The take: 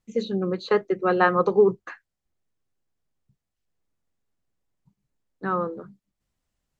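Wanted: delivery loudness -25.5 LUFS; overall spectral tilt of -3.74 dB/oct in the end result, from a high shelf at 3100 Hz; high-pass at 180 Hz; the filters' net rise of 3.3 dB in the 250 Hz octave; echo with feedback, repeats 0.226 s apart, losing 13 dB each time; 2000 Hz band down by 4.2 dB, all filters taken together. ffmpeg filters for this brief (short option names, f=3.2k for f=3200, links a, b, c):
-af "highpass=180,equalizer=f=250:t=o:g=8,equalizer=f=2k:t=o:g=-7,highshelf=f=3.1k:g=4.5,aecho=1:1:226|452|678:0.224|0.0493|0.0108,volume=-4dB"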